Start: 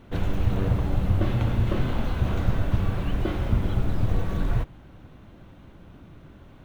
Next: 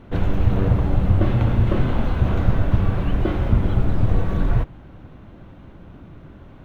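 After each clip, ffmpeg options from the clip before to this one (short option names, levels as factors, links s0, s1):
-af "highshelf=f=3900:g=-11.5,volume=1.88"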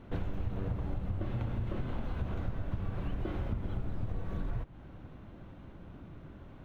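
-af "acompressor=threshold=0.0631:ratio=6,volume=0.447"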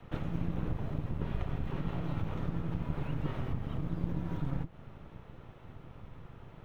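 -filter_complex "[0:a]afreqshift=-170,acrossover=split=320|780[s0][s1][s2];[s0]aeval=exprs='max(val(0),0)':c=same[s3];[s3][s1][s2]amix=inputs=3:normalize=0,volume=1.41"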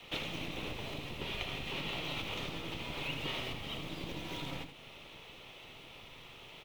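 -af "aexciter=amount=14.1:drive=4:freq=2400,bass=f=250:g=-14,treble=f=4000:g=-12,aecho=1:1:79:0.355,volume=1.12"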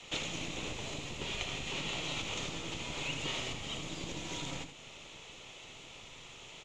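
-af "lowpass=f=7000:t=q:w=7.9"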